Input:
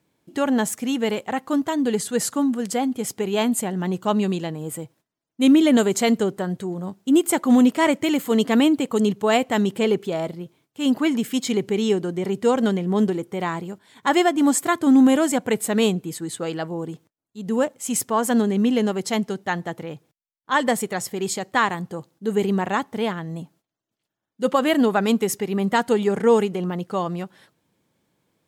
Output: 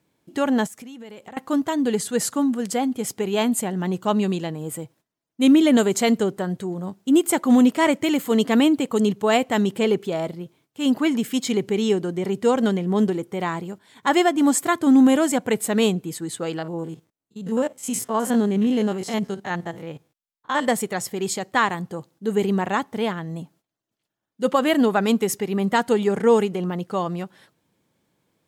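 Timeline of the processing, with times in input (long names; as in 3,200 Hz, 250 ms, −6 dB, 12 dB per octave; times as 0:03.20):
0:00.66–0:01.37: downward compressor 12 to 1, threshold −36 dBFS
0:16.58–0:20.68: spectrum averaged block by block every 50 ms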